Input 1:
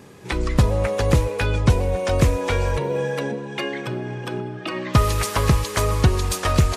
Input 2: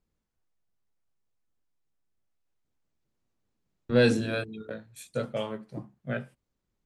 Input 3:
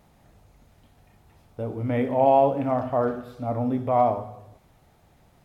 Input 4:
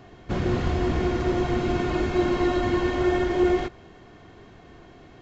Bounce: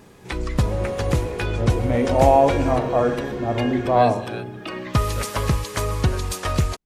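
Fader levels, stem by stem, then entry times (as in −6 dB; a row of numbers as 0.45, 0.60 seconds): −3.5, −4.5, +3.0, −9.0 decibels; 0.00, 0.00, 0.00, 0.35 seconds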